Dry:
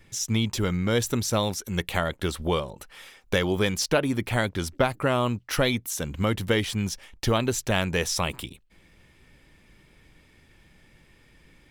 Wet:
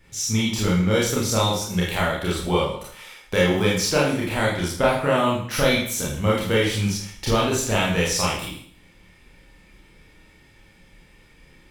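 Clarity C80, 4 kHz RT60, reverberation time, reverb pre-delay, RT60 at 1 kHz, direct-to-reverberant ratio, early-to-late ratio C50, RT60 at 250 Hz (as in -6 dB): 7.0 dB, 0.60 s, 0.60 s, 28 ms, 0.60 s, -6.5 dB, 2.0 dB, 0.60 s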